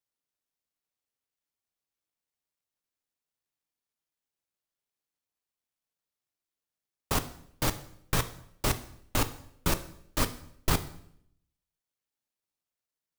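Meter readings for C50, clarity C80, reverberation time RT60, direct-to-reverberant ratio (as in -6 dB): 14.5 dB, 17.5 dB, 0.70 s, 9.5 dB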